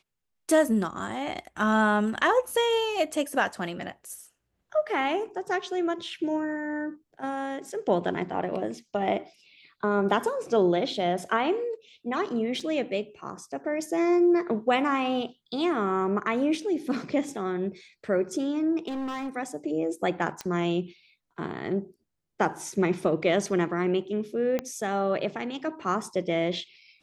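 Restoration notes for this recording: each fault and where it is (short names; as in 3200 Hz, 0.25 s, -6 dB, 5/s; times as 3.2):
12.6 gap 4.6 ms
18.87–19.29 clipped -29.5 dBFS
20.41 pop -18 dBFS
24.59 pop -15 dBFS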